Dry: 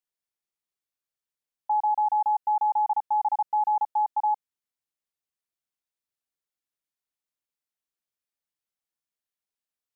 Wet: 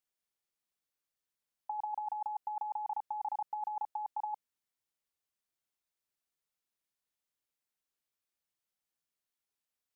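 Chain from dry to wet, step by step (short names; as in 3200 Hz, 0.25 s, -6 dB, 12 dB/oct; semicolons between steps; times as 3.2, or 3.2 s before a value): negative-ratio compressor -28 dBFS, ratio -0.5; gain -6.5 dB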